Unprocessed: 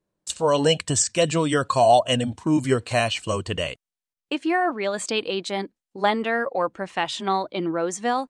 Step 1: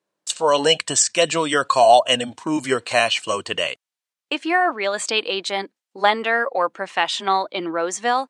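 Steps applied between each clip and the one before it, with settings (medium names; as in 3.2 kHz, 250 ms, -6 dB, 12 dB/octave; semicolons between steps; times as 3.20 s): frequency weighting A; trim +5 dB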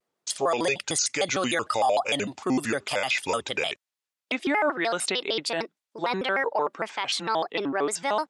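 peak limiter -13.5 dBFS, peak gain reduction 12 dB; vibrato with a chosen wave square 6.6 Hz, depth 250 cents; trim -2 dB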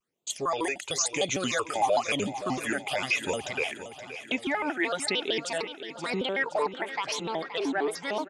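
phase shifter stages 8, 1 Hz, lowest notch 140–1700 Hz; on a send: feedback delay 523 ms, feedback 57%, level -12 dB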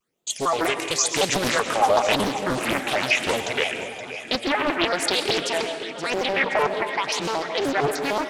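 reverberation RT60 1.1 s, pre-delay 85 ms, DRR 7.5 dB; loudspeaker Doppler distortion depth 0.92 ms; trim +6 dB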